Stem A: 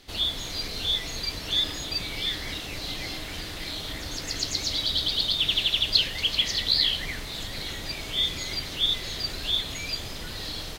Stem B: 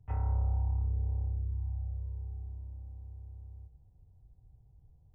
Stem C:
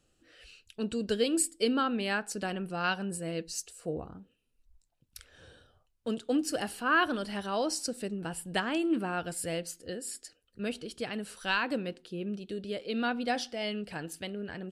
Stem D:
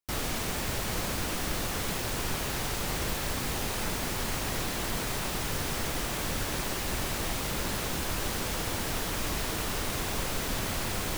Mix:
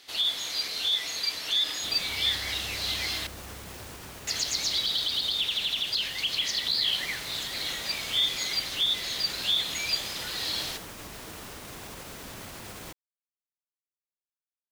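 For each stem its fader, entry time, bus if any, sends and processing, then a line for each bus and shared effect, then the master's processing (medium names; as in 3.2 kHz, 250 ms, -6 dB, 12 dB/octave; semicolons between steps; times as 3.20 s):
+2.5 dB, 0.00 s, muted 3.27–4.27 s, no bus, no send, high-pass 1.2 kHz 6 dB/octave; peak limiter -19.5 dBFS, peak gain reduction 10.5 dB
-4.0 dB, 2.00 s, bus A, no send, tilt shelf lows -7.5 dB
mute
-11.0 dB, 1.75 s, bus A, no send, none
bus A: 0.0 dB, high-pass 77 Hz 6 dB/octave; peak limiter -35 dBFS, peak gain reduction 5.5 dB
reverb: none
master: gain riding within 3 dB 2 s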